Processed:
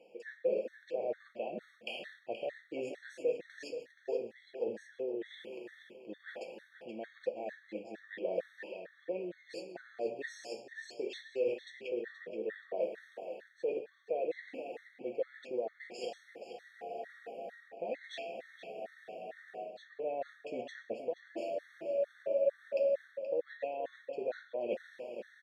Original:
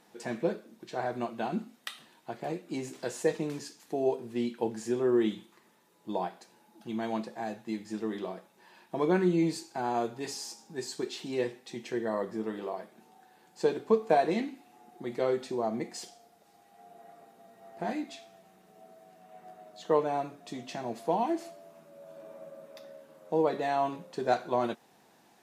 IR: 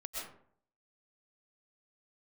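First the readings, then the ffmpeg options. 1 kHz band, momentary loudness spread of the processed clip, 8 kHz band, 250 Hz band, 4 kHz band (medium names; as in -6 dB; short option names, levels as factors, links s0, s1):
-13.5 dB, 12 LU, under -15 dB, -14.5 dB, -7.0 dB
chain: -filter_complex "[0:a]dynaudnorm=f=120:g=7:m=3.16,alimiter=limit=0.188:level=0:latency=1:release=70,areverse,acompressor=threshold=0.0141:ratio=16,areverse,asplit=3[s0][s1][s2];[s0]bandpass=f=530:t=q:w=8,volume=1[s3];[s1]bandpass=f=1840:t=q:w=8,volume=0.501[s4];[s2]bandpass=f=2480:t=q:w=8,volume=0.355[s5];[s3][s4][s5]amix=inputs=3:normalize=0,asplit=2[s6][s7];[s7]adelay=476,lowpass=f=4400:p=1,volume=0.335,asplit=2[s8][s9];[s9]adelay=476,lowpass=f=4400:p=1,volume=0.36,asplit=2[s10][s11];[s11]adelay=476,lowpass=f=4400:p=1,volume=0.36,asplit=2[s12][s13];[s13]adelay=476,lowpass=f=4400:p=1,volume=0.36[s14];[s6][s8][s10][s12][s14]amix=inputs=5:normalize=0,asplit=2[s15][s16];[1:a]atrim=start_sample=2205[s17];[s16][s17]afir=irnorm=-1:irlink=0,volume=0.188[s18];[s15][s18]amix=inputs=2:normalize=0,afftfilt=real='re*gt(sin(2*PI*2.2*pts/sr)*(1-2*mod(floor(b*sr/1024/1100),2)),0)':imag='im*gt(sin(2*PI*2.2*pts/sr)*(1-2*mod(floor(b*sr/1024/1100),2)),0)':win_size=1024:overlap=0.75,volume=5.31"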